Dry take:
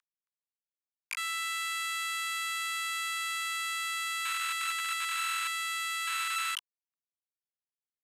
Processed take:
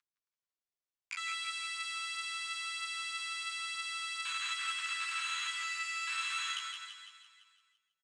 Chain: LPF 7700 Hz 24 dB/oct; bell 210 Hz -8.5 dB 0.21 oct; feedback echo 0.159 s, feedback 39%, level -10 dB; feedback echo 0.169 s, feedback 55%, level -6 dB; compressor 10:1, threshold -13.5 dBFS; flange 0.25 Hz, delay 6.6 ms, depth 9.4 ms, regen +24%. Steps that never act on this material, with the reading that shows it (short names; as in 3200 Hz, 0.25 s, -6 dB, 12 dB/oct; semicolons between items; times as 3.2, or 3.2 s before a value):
bell 210 Hz: input band starts at 960 Hz; compressor, threshold -13.5 dBFS: input peak -22.0 dBFS